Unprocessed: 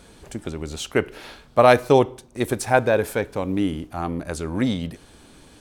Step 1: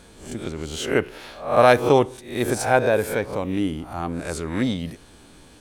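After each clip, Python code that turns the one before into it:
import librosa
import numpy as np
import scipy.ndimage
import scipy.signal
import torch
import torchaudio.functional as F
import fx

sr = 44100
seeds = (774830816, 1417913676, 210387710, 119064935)

y = fx.spec_swells(x, sr, rise_s=0.46)
y = y * librosa.db_to_amplitude(-1.5)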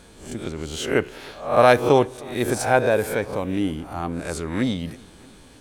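y = fx.echo_feedback(x, sr, ms=312, feedback_pct=58, wet_db=-24.0)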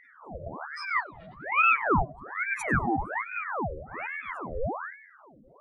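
y = fx.spec_expand(x, sr, power=3.7)
y = fx.echo_banded(y, sr, ms=97, feedback_pct=47, hz=1600.0, wet_db=-12.5)
y = fx.ring_lfo(y, sr, carrier_hz=1100.0, swing_pct=80, hz=1.2)
y = y * librosa.db_to_amplitude(-4.0)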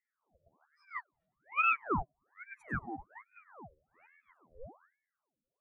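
y = fx.upward_expand(x, sr, threshold_db=-40.0, expansion=2.5)
y = y * librosa.db_to_amplitude(-5.5)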